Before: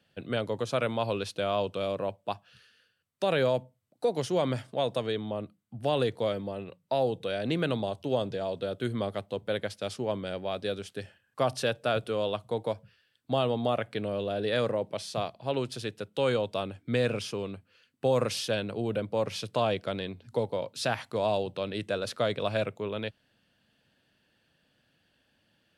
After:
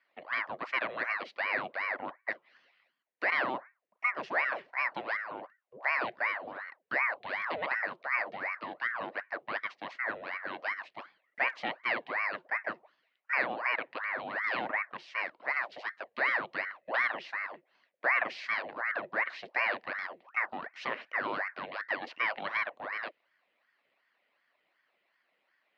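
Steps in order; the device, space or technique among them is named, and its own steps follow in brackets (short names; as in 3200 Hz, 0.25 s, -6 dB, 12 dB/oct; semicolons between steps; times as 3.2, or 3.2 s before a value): voice changer toy (ring modulator with a swept carrier 990 Hz, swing 75%, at 2.7 Hz; speaker cabinet 410–3600 Hz, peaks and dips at 420 Hz -6 dB, 610 Hz +3 dB, 870 Hz -5 dB, 1300 Hz -5 dB, 1900 Hz +5 dB, 3500 Hz -7 dB)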